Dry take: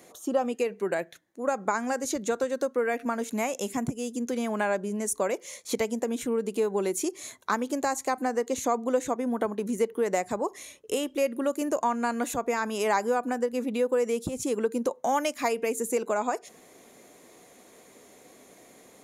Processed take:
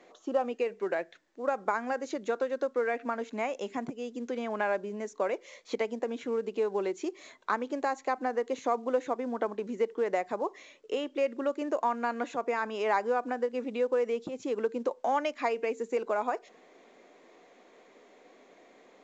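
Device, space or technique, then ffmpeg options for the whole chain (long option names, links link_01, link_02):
telephone: -af "highpass=290,lowpass=3200,volume=-2dB" -ar 16000 -c:a pcm_mulaw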